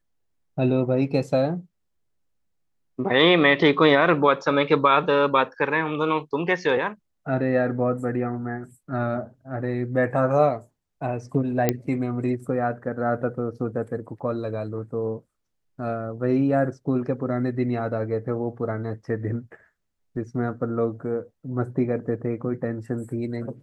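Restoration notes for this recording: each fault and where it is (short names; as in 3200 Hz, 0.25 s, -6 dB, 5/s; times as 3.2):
11.69 pop -6 dBFS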